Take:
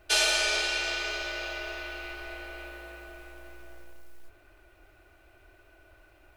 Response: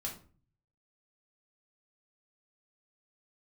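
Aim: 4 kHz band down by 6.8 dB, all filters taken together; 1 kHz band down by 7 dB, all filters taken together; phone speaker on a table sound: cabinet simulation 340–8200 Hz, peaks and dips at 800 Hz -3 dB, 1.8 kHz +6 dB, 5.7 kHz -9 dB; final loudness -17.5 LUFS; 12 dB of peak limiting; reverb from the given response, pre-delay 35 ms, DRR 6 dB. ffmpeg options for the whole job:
-filter_complex "[0:a]equalizer=f=1000:t=o:g=-9,equalizer=f=4000:t=o:g=-7,alimiter=level_in=1.58:limit=0.0631:level=0:latency=1,volume=0.631,asplit=2[s0][s1];[1:a]atrim=start_sample=2205,adelay=35[s2];[s1][s2]afir=irnorm=-1:irlink=0,volume=0.501[s3];[s0][s3]amix=inputs=2:normalize=0,highpass=f=340:w=0.5412,highpass=f=340:w=1.3066,equalizer=f=800:t=q:w=4:g=-3,equalizer=f=1800:t=q:w=4:g=6,equalizer=f=5700:t=q:w=4:g=-9,lowpass=f=8200:w=0.5412,lowpass=f=8200:w=1.3066,volume=9.44"

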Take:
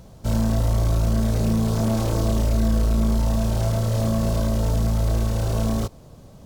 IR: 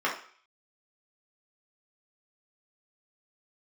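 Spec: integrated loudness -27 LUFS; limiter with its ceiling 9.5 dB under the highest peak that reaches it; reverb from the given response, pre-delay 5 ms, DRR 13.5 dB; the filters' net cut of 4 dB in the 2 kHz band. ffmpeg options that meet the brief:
-filter_complex "[0:a]equalizer=f=2000:t=o:g=-5.5,alimiter=limit=0.0891:level=0:latency=1,asplit=2[s0][s1];[1:a]atrim=start_sample=2205,adelay=5[s2];[s1][s2]afir=irnorm=-1:irlink=0,volume=0.0531[s3];[s0][s3]amix=inputs=2:normalize=0,volume=1.26"

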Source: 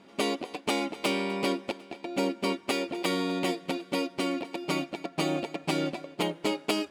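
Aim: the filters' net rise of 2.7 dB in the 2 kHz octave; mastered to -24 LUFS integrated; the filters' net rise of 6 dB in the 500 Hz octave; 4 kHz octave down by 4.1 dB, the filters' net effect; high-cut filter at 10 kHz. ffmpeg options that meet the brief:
-af "lowpass=10000,equalizer=f=500:t=o:g=7.5,equalizer=f=2000:t=o:g=6,equalizer=f=4000:t=o:g=-9,volume=1.5"

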